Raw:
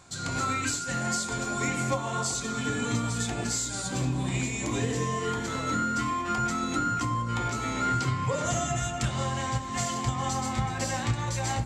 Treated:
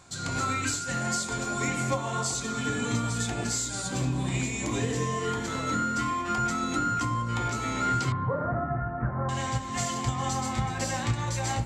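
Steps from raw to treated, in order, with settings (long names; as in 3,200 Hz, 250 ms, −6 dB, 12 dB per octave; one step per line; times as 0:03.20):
0:08.12–0:09.29: Butterworth low-pass 1,700 Hz 48 dB per octave
on a send: convolution reverb RT60 1.1 s, pre-delay 61 ms, DRR 19 dB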